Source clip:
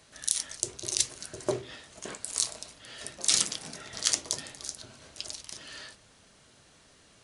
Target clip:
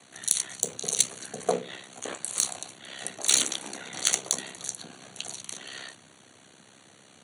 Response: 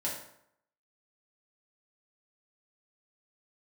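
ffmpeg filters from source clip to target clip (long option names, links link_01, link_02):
-af "acontrast=88,aeval=exprs='val(0)*sin(2*PI*33*n/s)':channel_layout=same,afreqshift=86,asuperstop=centerf=5100:order=8:qfactor=4.4"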